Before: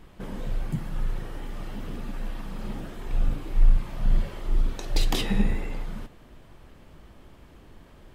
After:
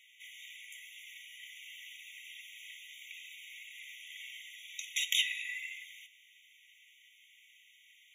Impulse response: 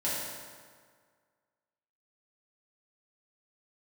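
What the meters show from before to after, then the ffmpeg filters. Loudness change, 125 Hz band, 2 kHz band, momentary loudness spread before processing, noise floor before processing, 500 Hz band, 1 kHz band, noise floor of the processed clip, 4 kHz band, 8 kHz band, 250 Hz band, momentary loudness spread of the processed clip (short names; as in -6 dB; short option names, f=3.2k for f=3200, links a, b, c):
-8.5 dB, under -40 dB, +2.5 dB, 13 LU, -52 dBFS, under -40 dB, under -40 dB, -63 dBFS, +2.0 dB, n/a, under -40 dB, 20 LU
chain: -af "tiltshelf=f=1.5k:g=3.5,afftfilt=real='re*eq(mod(floor(b*sr/1024/1900),2),1)':imag='im*eq(mod(floor(b*sr/1024/1900),2),1)':win_size=1024:overlap=0.75,volume=6.5dB"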